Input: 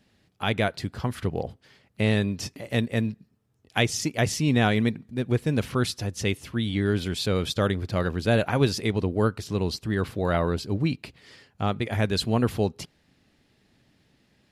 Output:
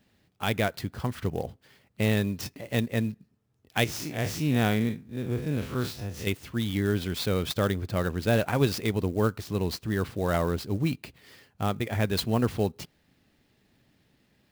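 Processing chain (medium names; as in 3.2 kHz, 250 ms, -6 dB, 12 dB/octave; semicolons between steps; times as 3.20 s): 3.84–6.27 s: spectral blur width 90 ms; sampling jitter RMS 0.021 ms; trim -2 dB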